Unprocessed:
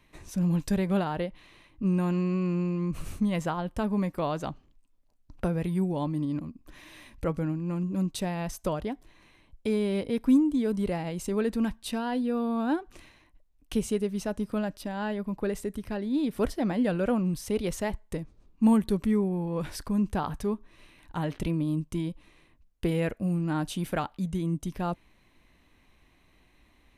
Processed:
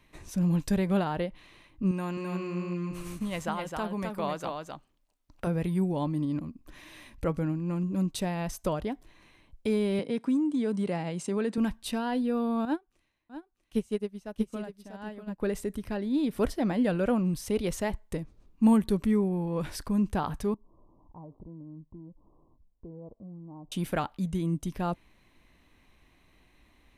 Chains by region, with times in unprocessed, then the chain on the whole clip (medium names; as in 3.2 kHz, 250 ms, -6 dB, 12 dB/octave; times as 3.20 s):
1.91–5.47 s: bass shelf 370 Hz -9.5 dB + delay 261 ms -4.5 dB
9.99–11.58 s: Chebyshev band-pass 150–9000 Hz, order 3 + compression 3:1, threshold -24 dBFS
12.65–15.40 s: delay 644 ms -5 dB + upward expansion 2.5:1, over -37 dBFS
20.54–23.72 s: steep low-pass 1.1 kHz 96 dB/octave + compression 2:1, threshold -56 dBFS
whole clip: none